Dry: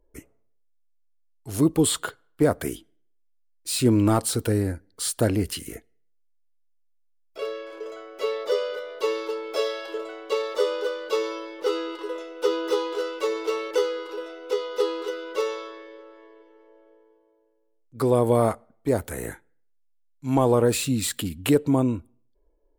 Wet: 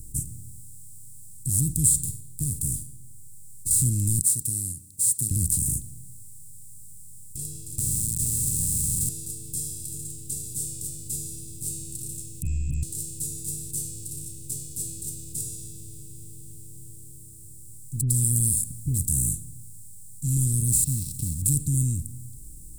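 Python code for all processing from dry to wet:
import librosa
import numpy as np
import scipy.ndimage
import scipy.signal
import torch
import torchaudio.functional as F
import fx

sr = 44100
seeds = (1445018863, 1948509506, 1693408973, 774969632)

y = fx.chain(x, sr, fx.comb_fb(f0_hz=430.0, decay_s=0.26, harmonics='all', damping=0.0, mix_pct=80),
    fx.leveller(passes=1),
    fx.band_squash(depth_pct=40), at=(2.04, 3.71))
y = fx.chain(y, sr, fx.highpass(hz=520.0, slope=12),
    fx.upward_expand(threshold_db=-46.0, expansion=1.5), at=(4.21, 5.31))
y = fx.chain(y, sr, fx.bass_treble(bass_db=-10, treble_db=-2),
    fx.quant_companded(bits=2),
    fx.doppler_dist(depth_ms=0.14), at=(7.78, 9.09))
y = fx.chain(y, sr, fx.freq_invert(carrier_hz=3000),
    fx.low_shelf(hz=430.0, db=8.5),
    fx.sustainer(db_per_s=36.0), at=(12.42, 12.83))
y = fx.chain(y, sr, fx.high_shelf(hz=4400.0, db=9.0),
    fx.dispersion(late='highs', ms=93.0, hz=1100.0), at=(18.01, 18.98))
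y = fx.chain(y, sr, fx.dead_time(dead_ms=0.057),
    fx.cheby_ripple(hz=5700.0, ripple_db=6),
    fx.quant_companded(bits=6), at=(20.84, 21.42))
y = fx.bin_compress(y, sr, power=0.4)
y = scipy.signal.sosfilt(scipy.signal.ellip(3, 1.0, 80, [130.0, 7900.0], 'bandstop', fs=sr, output='sos'), y)
y = fx.dynamic_eq(y, sr, hz=110.0, q=3.4, threshold_db=-40.0, ratio=4.0, max_db=-7)
y = y * librosa.db_to_amplitude(5.0)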